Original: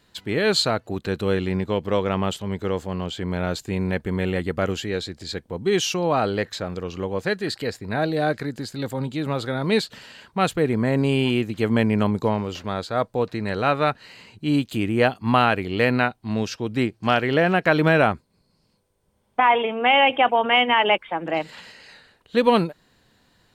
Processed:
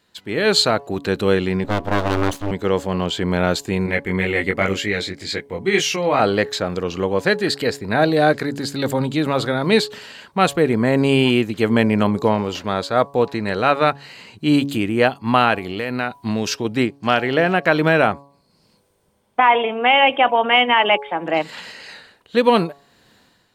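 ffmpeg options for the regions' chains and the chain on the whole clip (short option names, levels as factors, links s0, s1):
-filter_complex "[0:a]asettb=1/sr,asplit=3[s0][s1][s2];[s0]atrim=end=1.644[s3];[s1]atrim=start=1.64:end=2.51,asetpts=PTS-STARTPTS,afade=t=in:d=0.004:c=qsin,afade=t=out:st=0.866:d=0.004:c=qsin,bass=f=250:g=9,treble=f=4000:g=-3,aeval=exprs='abs(val(0))':c=same[s4];[s2]atrim=start=2.506[s5];[s3][s4]acrossfade=d=0.004:c1=hsin:c2=qsin[s6];[s6][s5]acrossfade=d=0.004:c1=qsin:c2=hsin,asettb=1/sr,asplit=3[s7][s8][s9];[s7]atrim=end=3.864[s10];[s8]atrim=start=3.86:end=6.2,asetpts=PTS-STARTPTS,afade=t=in:d=0.004:c=qsin,afade=t=out:st=2.336:d=0.004:c=qsin,equalizer=f=2100:w=4.3:g=12.5,flanger=delay=19:depth=2.9:speed=2[s11];[s9]atrim=start=6.196[s12];[s10][s11]acrossfade=d=0.004:c1=hsin:c2=qsin[s13];[s13][s12]acrossfade=d=0.004:c1=qsin:c2=hsin,asettb=1/sr,asplit=3[s14][s15][s16];[s14]atrim=end=15.584[s17];[s15]atrim=start=15.58:end=16.65,asetpts=PTS-STARTPTS,afade=t=in:d=0.004:c=qsin,afade=t=out:st=1.066:d=0.004:c=qsin,highshelf=f=8800:g=7,acompressor=threshold=0.0631:ratio=6:attack=3.2:release=140:knee=1:detection=peak[s18];[s16]atrim=start=16.646[s19];[s17][s18]acrossfade=d=0.004:c1=hsin:c2=qsin[s20];[s20][s19]acrossfade=d=0.004:c1=qsin:c2=hsin,dynaudnorm=f=110:g=7:m=3.76,lowshelf=f=90:g=-11.5,bandreject=f=140.5:t=h:w=4,bandreject=f=281:t=h:w=4,bandreject=f=421.5:t=h:w=4,bandreject=f=562:t=h:w=4,bandreject=f=702.5:t=h:w=4,bandreject=f=843:t=h:w=4,bandreject=f=983.5:t=h:w=4,bandreject=f=1124:t=h:w=4,volume=0.841"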